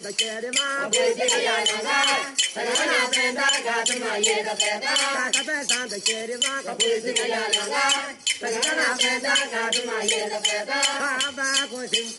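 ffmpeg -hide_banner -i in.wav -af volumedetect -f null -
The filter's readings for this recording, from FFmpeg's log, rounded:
mean_volume: -23.9 dB
max_volume: -7.4 dB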